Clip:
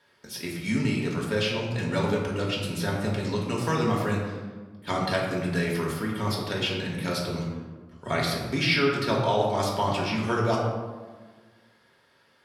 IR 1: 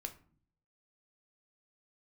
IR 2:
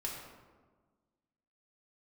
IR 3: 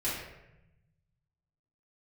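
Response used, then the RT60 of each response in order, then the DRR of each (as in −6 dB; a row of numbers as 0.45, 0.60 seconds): 2; 0.50, 1.4, 0.90 seconds; 6.0, −3.5, −10.5 decibels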